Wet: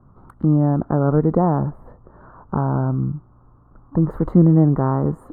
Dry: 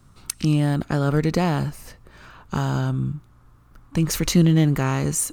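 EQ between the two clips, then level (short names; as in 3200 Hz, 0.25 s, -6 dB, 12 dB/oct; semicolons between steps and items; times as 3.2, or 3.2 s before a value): inverse Chebyshev low-pass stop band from 2300 Hz, stop band 40 dB; low shelf 150 Hz -5.5 dB; +5.5 dB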